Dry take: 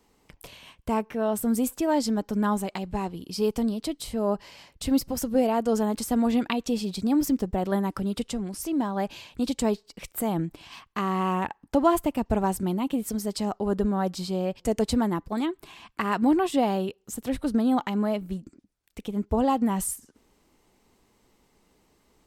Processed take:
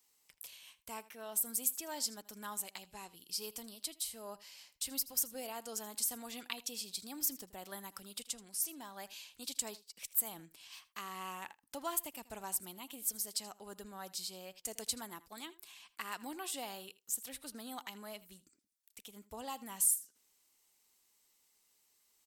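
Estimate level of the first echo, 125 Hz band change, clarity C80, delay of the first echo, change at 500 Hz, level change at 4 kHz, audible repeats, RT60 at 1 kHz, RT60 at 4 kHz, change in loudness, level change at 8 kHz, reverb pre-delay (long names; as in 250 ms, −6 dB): −19.0 dB, −28.0 dB, no reverb audible, 80 ms, −22.0 dB, −5.0 dB, 1, no reverb audible, no reverb audible, −12.0 dB, +1.0 dB, no reverb audible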